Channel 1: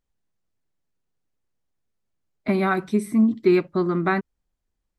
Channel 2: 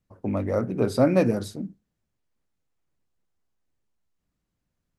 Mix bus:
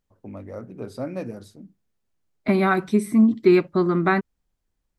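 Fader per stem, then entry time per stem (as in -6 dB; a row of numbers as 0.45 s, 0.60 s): +2.0 dB, -11.0 dB; 0.00 s, 0.00 s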